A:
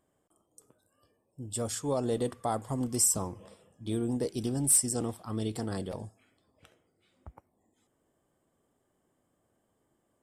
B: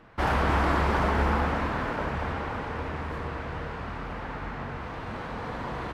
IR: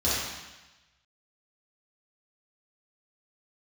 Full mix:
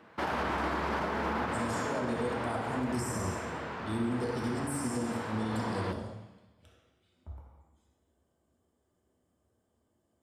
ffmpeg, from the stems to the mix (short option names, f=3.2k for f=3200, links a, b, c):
-filter_complex "[0:a]volume=-9.5dB,asplit=2[a][b];[b]volume=-7.5dB[c];[1:a]highpass=190,volume=-2dB,asplit=2[d][e];[e]volume=-22.5dB[f];[2:a]atrim=start_sample=2205[g];[c][f]amix=inputs=2:normalize=0[h];[h][g]afir=irnorm=-1:irlink=0[i];[a][d][i]amix=inputs=3:normalize=0,acrossover=split=3200[j][k];[k]acompressor=threshold=-40dB:ratio=4:attack=1:release=60[l];[j][l]amix=inputs=2:normalize=0,alimiter=limit=-23.5dB:level=0:latency=1:release=55"